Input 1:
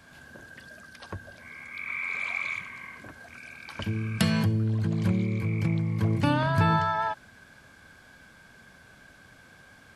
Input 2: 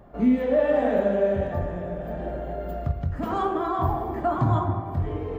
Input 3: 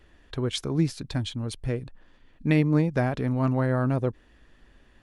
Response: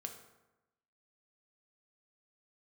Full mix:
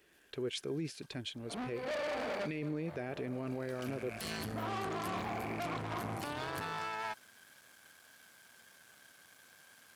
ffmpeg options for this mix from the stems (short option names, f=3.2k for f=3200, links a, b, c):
-filter_complex "[0:a]aemphasis=mode=production:type=50fm,aeval=exprs='max(val(0),0)':c=same,volume=-3dB,afade=t=in:st=3.43:d=0.5:silence=0.223872[a];[1:a]aeval=exprs='(tanh(35.5*val(0)+0.75)-tanh(0.75))/35.5':c=same,aeval=exprs='val(0)+0.00501*(sin(2*PI*60*n/s)+sin(2*PI*2*60*n/s)/2+sin(2*PI*3*60*n/s)/3+sin(2*PI*4*60*n/s)/4+sin(2*PI*5*60*n/s)/5)':c=same,adelay=1350,volume=-2dB[b];[2:a]equalizer=f=160:t=o:w=0.67:g=4,equalizer=f=400:t=o:w=0.67:g=9,equalizer=f=1k:t=o:w=0.67:g=-7,equalizer=f=2.5k:t=o:w=0.67:g=7,volume=-9dB,asplit=2[c][d];[d]apad=whole_len=297151[e];[b][e]sidechaincompress=threshold=-38dB:ratio=8:attack=16:release=191[f];[a][f][c]amix=inputs=3:normalize=0,highpass=f=400:p=1,alimiter=level_in=5.5dB:limit=-24dB:level=0:latency=1:release=17,volume=-5.5dB"